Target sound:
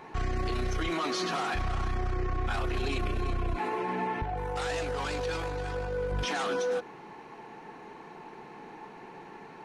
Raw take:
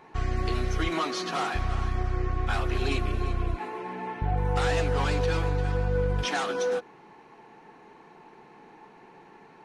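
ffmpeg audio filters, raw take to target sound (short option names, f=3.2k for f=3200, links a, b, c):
-filter_complex "[0:a]alimiter=level_in=4dB:limit=-24dB:level=0:latency=1:release=24,volume=-4dB,asettb=1/sr,asplit=3[a][b][c];[a]atrim=end=4.234[d];[b]atrim=start=4.23:end=6.12,asetpts=PTS-STARTPTS,afade=t=in:d=0.004:c=qsin,afade=t=out:st=1.886:d=0.004:c=qsin,bass=f=250:g=-7,treble=f=4k:g=3[e];[c]atrim=start=6.116[f];[d][e]acrossfade=d=0.004:c1=hsin:c2=qsin[g];[g][f]acrossfade=d=0.004:c1=qsin:c2=hsin,volume=5dB"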